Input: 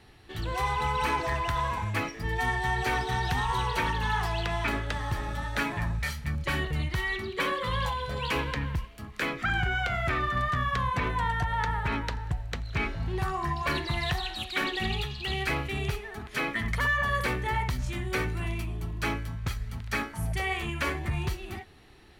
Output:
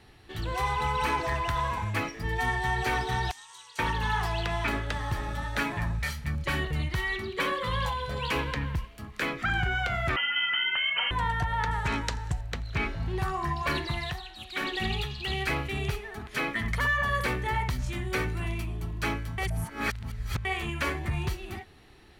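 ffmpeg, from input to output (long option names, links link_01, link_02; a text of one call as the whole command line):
ffmpeg -i in.wav -filter_complex "[0:a]asettb=1/sr,asplit=3[link_01][link_02][link_03];[link_01]atrim=end=3.314[link_04];[link_02]atrim=start=3.31:end=3.79,asetpts=PTS-STARTPTS,afade=type=in:duration=0.004:curve=qsin,afade=type=out:start_time=0.476:duration=0.004:curve=qsin,bandpass=frequency=7300:width_type=q:width=2.1[link_05];[link_03]atrim=start=3.786[link_06];[link_04][link_05]acrossfade=duration=0.004:curve1=hsin:curve2=qsin[link_07];[link_07][link_06]acrossfade=duration=0.004:curve1=qsin:curve2=hsin,asettb=1/sr,asplit=3[link_08][link_09][link_10];[link_08]atrim=end=10.164[link_11];[link_09]atrim=start=10.16:end=11.11,asetpts=PTS-STARTPTS,afade=type=in:duration=0.004:curve=qsin,afade=type=out:start_time=0.946:duration=0.004:curve=qsin,lowpass=frequency=2700:width_type=q:width=0.5098,lowpass=frequency=2700:width_type=q:width=0.6013,lowpass=frequency=2700:width_type=q:width=0.9,lowpass=frequency=2700:width_type=q:width=2.563,afreqshift=-3200[link_12];[link_10]atrim=start=11.106[link_13];[link_11][link_12]acrossfade=duration=0.004:curve1=hsin:curve2=qsin[link_14];[link_14][link_13]acrossfade=duration=0.004:curve1=qsin:curve2=hsin,asettb=1/sr,asplit=3[link_15][link_16][link_17];[link_15]atrim=end=11.714[link_18];[link_16]atrim=start=11.71:end=12.41,asetpts=PTS-STARTPTS,afade=type=in:duration=0.004:curve=qsin,afade=type=out:start_time=0.696:duration=0.004:curve=qsin,equalizer=frequency=7200:width_type=o:width=1.2:gain=12[link_19];[link_17]atrim=start=12.406[link_20];[link_18][link_19]acrossfade=duration=0.004:curve1=hsin:curve2=qsin[link_21];[link_21][link_20]acrossfade=duration=0.004:curve1=qsin:curve2=hsin,asplit=5[link_22][link_23][link_24][link_25][link_26];[link_22]atrim=end=14.24,asetpts=PTS-STARTPTS,afade=type=out:start_time=13.83:duration=0.41:silence=0.334965[link_27];[link_23]atrim=start=14.24:end=14.37,asetpts=PTS-STARTPTS,volume=-9.5dB[link_28];[link_24]atrim=start=14.37:end=19.382,asetpts=PTS-STARTPTS,afade=type=in:duration=0.41:silence=0.334965[link_29];[link_25]atrim=start=19.378:end=20.452,asetpts=PTS-STARTPTS,areverse[link_30];[link_26]atrim=start=20.448[link_31];[link_27][link_28][link_29]concat=n=3:v=0:a=1[link_32];[link_32][link_30]acrossfade=duration=0.004:curve1=hsin:curve2=hsin[link_33];[link_33][link_31]acrossfade=duration=0.004:curve1=hsin:curve2=hsin" out.wav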